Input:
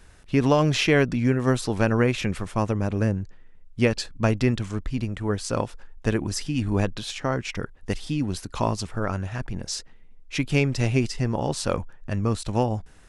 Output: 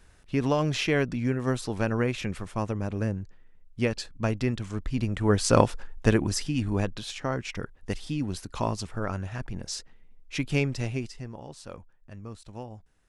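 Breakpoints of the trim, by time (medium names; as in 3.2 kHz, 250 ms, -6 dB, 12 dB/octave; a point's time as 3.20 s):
4.59 s -5.5 dB
5.60 s +7 dB
6.78 s -4 dB
10.63 s -4 dB
11.44 s -17 dB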